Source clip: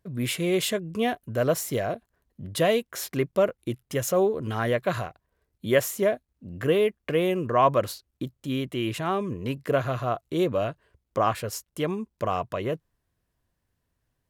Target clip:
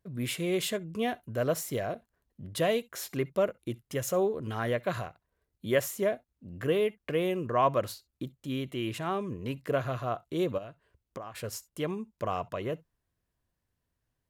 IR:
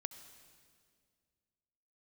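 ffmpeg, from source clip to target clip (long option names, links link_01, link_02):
-filter_complex "[0:a]asplit=3[link_01][link_02][link_03];[link_01]afade=type=out:start_time=10.57:duration=0.02[link_04];[link_02]acompressor=threshold=-33dB:ratio=16,afade=type=in:start_time=10.57:duration=0.02,afade=type=out:start_time=11.34:duration=0.02[link_05];[link_03]afade=type=in:start_time=11.34:duration=0.02[link_06];[link_04][link_05][link_06]amix=inputs=3:normalize=0[link_07];[1:a]atrim=start_sample=2205,atrim=end_sample=3087[link_08];[link_07][link_08]afir=irnorm=-1:irlink=0,volume=-2dB"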